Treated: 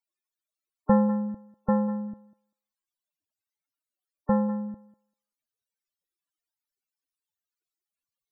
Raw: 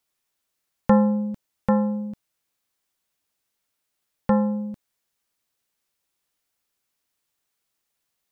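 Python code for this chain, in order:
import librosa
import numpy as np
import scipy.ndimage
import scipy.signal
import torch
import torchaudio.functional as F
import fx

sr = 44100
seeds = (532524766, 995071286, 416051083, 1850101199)

y = fx.spec_topn(x, sr, count=32)
y = fx.echo_thinned(y, sr, ms=196, feedback_pct=17, hz=550.0, wet_db=-12.0)
y = y * 10.0 ** (-3.5 / 20.0)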